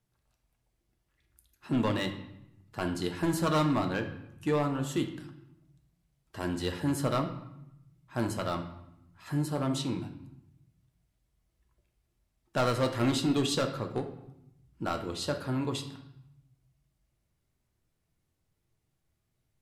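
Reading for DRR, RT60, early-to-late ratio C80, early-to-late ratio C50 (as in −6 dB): 4.5 dB, 0.85 s, 12.5 dB, 9.5 dB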